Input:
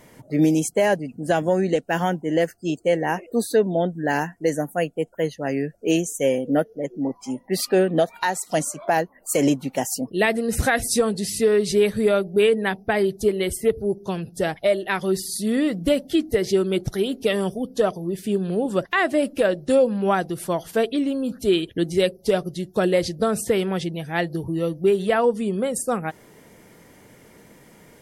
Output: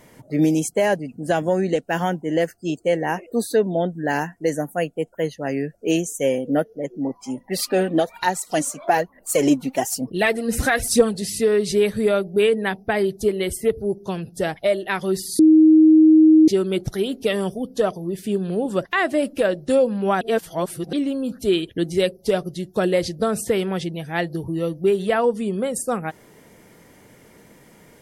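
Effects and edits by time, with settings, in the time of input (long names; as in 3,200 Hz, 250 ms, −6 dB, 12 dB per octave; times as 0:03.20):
0:07.37–0:11.22: phase shifter 1.1 Hz, delay 4.4 ms
0:15.39–0:16.48: beep over 314 Hz −8 dBFS
0:20.21–0:20.93: reverse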